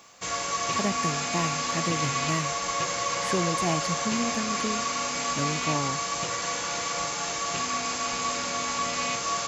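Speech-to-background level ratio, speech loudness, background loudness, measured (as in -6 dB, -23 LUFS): -5.0 dB, -32.5 LUFS, -27.5 LUFS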